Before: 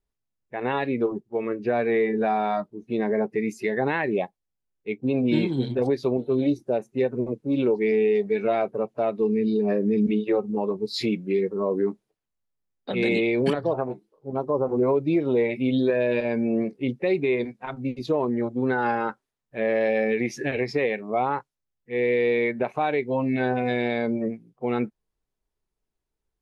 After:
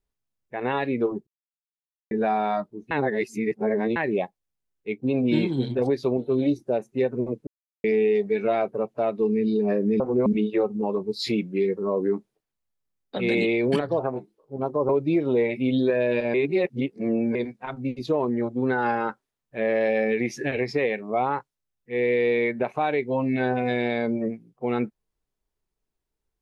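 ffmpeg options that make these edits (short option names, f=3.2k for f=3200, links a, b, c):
-filter_complex "[0:a]asplit=12[a][b][c][d][e][f][g][h][i][j][k][l];[a]atrim=end=1.27,asetpts=PTS-STARTPTS,afade=t=out:st=1.266:d=0.004:c=hsin[m];[b]atrim=start=1.27:end=2.11,asetpts=PTS-STARTPTS,volume=0[n];[c]atrim=start=2.11:end=2.912,asetpts=PTS-STARTPTS,afade=t=in:d=0.004:c=hsin[o];[d]atrim=start=2.908:end=3.962,asetpts=PTS-STARTPTS,areverse[p];[e]atrim=start=3.958:end=7.47,asetpts=PTS-STARTPTS,afade=t=out:st=3.508:d=0.004:c=hsin[q];[f]atrim=start=7.47:end=7.84,asetpts=PTS-STARTPTS,volume=0[r];[g]atrim=start=7.84:end=10.002,asetpts=PTS-STARTPTS,afade=t=in:d=0.004:c=hsin[s];[h]atrim=start=14.628:end=14.892[t];[i]atrim=start=9.998:end=14.632[u];[j]atrim=start=14.888:end=16.342[v];[k]atrim=start=16.338:end=17.352,asetpts=PTS-STARTPTS,areverse[w];[l]atrim=start=17.348[x];[m][n][o]concat=n=3:v=0:a=1[y];[y][p]acrossfade=d=0.004:c1=hsin:c2=hsin[z];[q][r][s]concat=n=3:v=0:a=1[aa];[z][aa]acrossfade=d=0.004:c1=hsin:c2=hsin[ab];[ab][t]acrossfade=d=0.004:c1=hsin:c2=hsin[ac];[ac][u]acrossfade=d=0.004:c1=hsin:c2=hsin[ad];[ad][v]acrossfade=d=0.004:c1=hsin:c2=hsin[ae];[ae][w]acrossfade=d=0.004:c1=hsin:c2=hsin[af];[af][x]acrossfade=d=0.004:c1=hsin:c2=hsin"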